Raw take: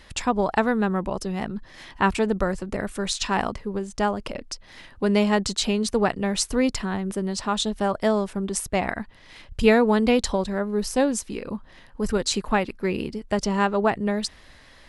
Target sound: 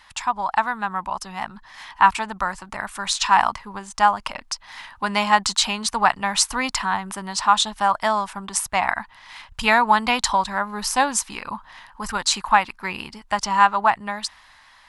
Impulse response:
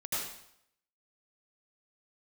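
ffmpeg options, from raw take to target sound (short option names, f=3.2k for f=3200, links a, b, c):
-af "lowshelf=f=650:t=q:w=3:g=-12,dynaudnorm=f=180:g=11:m=11.5dB,volume=-1dB"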